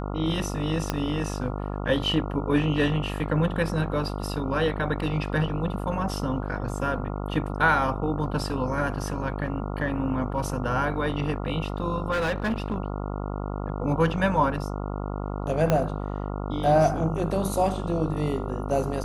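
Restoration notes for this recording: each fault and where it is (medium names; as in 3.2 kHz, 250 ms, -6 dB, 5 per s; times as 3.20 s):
buzz 50 Hz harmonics 28 -31 dBFS
0.90 s: pop -10 dBFS
12.11–12.76 s: clipped -22 dBFS
15.70 s: pop -9 dBFS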